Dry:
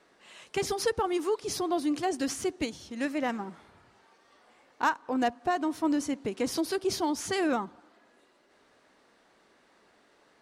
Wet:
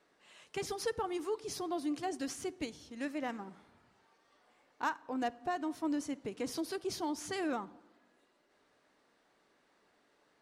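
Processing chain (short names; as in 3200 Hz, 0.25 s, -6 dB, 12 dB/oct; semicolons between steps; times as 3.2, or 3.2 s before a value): shoebox room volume 2800 m³, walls furnished, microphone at 0.4 m; gain -8 dB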